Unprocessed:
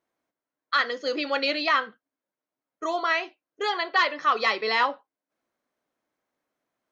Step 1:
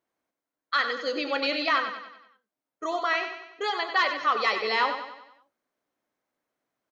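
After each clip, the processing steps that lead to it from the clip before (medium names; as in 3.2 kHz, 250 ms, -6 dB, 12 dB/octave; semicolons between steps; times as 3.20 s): feedback delay 95 ms, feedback 49%, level -8.5 dB; trim -2 dB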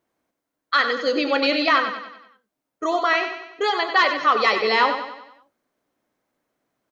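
bass shelf 420 Hz +6 dB; trim +5.5 dB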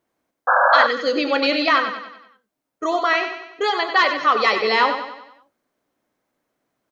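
painted sound noise, 0.47–0.87 s, 500–1700 Hz -16 dBFS; trim +1 dB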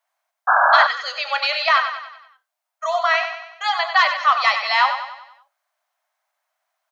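steep high-pass 630 Hz 72 dB/octave; trim +1 dB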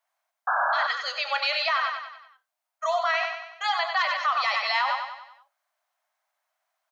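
peak limiter -13 dBFS, peak gain reduction 11.5 dB; trim -3 dB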